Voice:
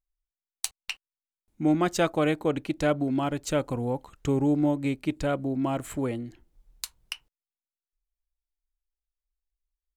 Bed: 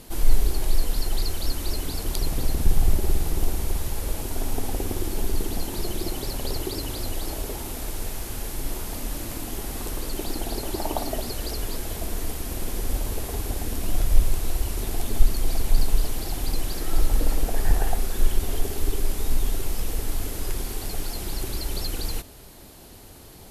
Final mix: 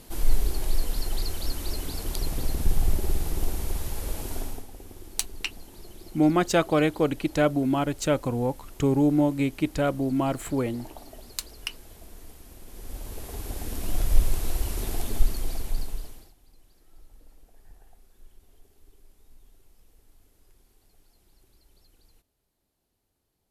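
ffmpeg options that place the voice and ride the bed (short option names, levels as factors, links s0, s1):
-filter_complex "[0:a]adelay=4550,volume=1.33[s0];[1:a]volume=3.76,afade=t=out:st=4.35:d=0.31:silence=0.211349,afade=t=in:st=12.66:d=1.49:silence=0.177828,afade=t=out:st=14.93:d=1.41:silence=0.0316228[s1];[s0][s1]amix=inputs=2:normalize=0"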